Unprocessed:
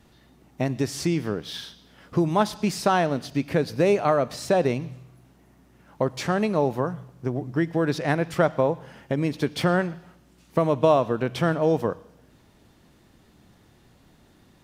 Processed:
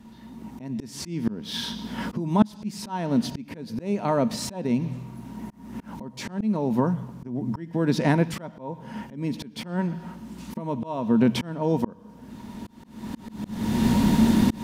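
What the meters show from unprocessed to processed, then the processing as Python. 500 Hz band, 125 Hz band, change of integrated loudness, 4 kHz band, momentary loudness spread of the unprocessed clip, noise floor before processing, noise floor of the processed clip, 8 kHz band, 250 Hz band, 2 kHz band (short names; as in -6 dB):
-7.0 dB, 0.0 dB, -1.5 dB, +0.5 dB, 10 LU, -58 dBFS, -47 dBFS, 0.0 dB, +3.5 dB, -5.5 dB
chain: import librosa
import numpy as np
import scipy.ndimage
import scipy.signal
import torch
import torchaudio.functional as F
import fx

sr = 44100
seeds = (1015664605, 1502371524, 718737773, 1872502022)

y = fx.recorder_agc(x, sr, target_db=-11.5, rise_db_per_s=17.0, max_gain_db=30)
y = fx.dynamic_eq(y, sr, hz=1100.0, q=1.1, threshold_db=-37.0, ratio=4.0, max_db=-5)
y = fx.small_body(y, sr, hz=(220.0, 940.0), ring_ms=90, db=18)
y = fx.auto_swell(y, sr, attack_ms=440.0)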